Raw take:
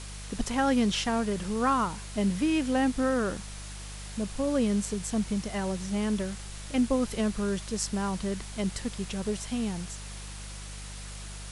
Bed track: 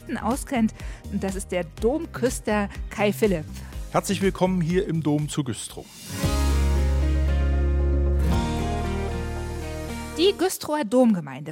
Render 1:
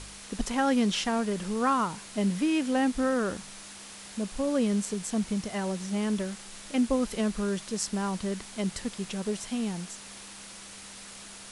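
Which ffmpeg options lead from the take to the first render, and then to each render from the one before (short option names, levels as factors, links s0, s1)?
-af "bandreject=f=50:t=h:w=4,bandreject=f=100:t=h:w=4,bandreject=f=150:t=h:w=4"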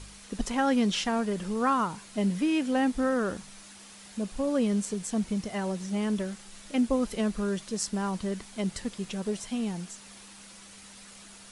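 -af "afftdn=nr=6:nf=-46"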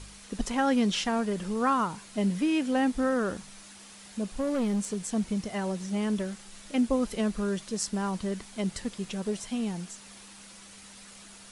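-filter_complex "[0:a]asettb=1/sr,asplit=3[s0][s1][s2];[s0]atrim=end=4.364[s3];[s1]atrim=start=4.36:end=5.03,asetpts=PTS-STARTPTS,afade=t=in:d=0.004:c=qsin,afade=t=out:st=0.666:d=0.004:c=qsin,volume=15.8,asoftclip=hard,volume=0.0631[s4];[s2]atrim=start=5.026[s5];[s3][s4]acrossfade=d=0.004:c1=hsin:c2=qsin[s6];[s6][s5]acrossfade=d=0.004:c1=qsin:c2=hsin"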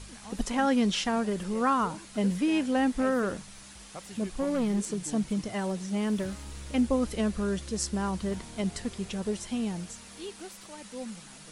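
-filter_complex "[1:a]volume=0.0841[s0];[0:a][s0]amix=inputs=2:normalize=0"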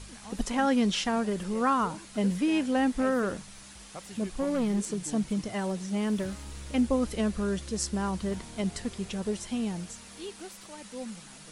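-af anull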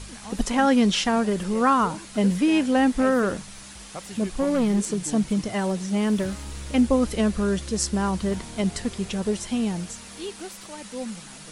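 -af "volume=2"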